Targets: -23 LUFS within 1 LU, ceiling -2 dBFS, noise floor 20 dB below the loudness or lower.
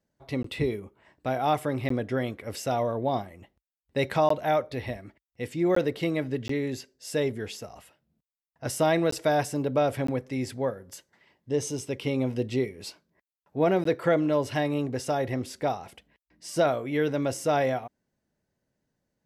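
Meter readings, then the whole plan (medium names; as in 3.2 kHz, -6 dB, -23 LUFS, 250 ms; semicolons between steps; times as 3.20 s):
dropouts 8; longest dropout 14 ms; loudness -28.0 LUFS; peak level -12.0 dBFS; loudness target -23.0 LUFS
-> interpolate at 0.43/1.89/4.29/5.75/6.48/9.11/10.07/13.84 s, 14 ms; trim +5 dB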